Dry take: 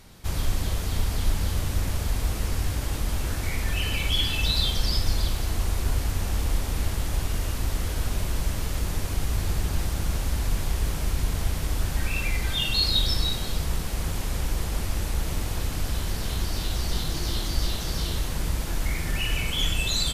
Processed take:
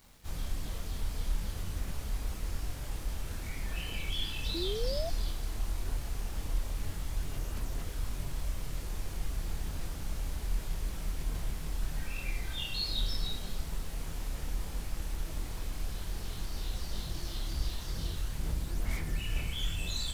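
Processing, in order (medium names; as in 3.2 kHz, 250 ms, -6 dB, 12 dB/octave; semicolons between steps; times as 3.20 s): bit crusher 8-bit; chorus voices 6, 1.1 Hz, delay 27 ms, depth 3.7 ms; painted sound rise, 4.54–5.10 s, 320–700 Hz -28 dBFS; trim -8.5 dB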